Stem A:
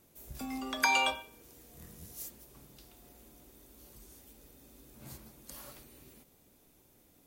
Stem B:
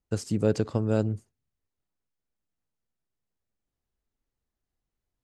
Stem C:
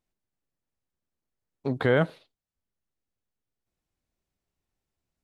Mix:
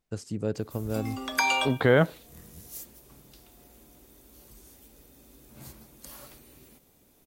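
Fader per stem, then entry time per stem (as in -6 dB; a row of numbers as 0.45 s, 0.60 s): +2.5 dB, -6.0 dB, +2.0 dB; 0.55 s, 0.00 s, 0.00 s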